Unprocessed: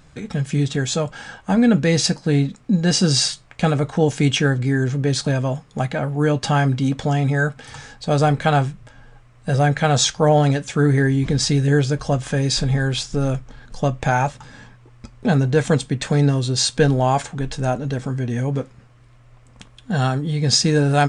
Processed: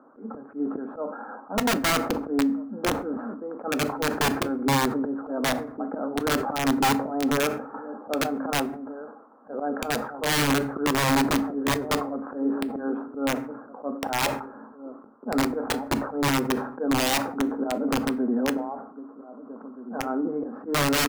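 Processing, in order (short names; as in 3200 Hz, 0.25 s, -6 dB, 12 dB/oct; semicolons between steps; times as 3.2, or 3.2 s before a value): Chebyshev band-pass 220–1400 Hz, order 5; auto swell 0.193 s; outdoor echo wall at 270 m, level -17 dB; in parallel at -2.5 dB: compressor 12:1, threshold -30 dBFS, peak gain reduction 16.5 dB; on the sum: wrapped overs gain 16.5 dB; on a send at -14 dB: reverb RT60 0.65 s, pre-delay 4 ms; on the sum: sustainer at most 80 dB/s; gain -1 dB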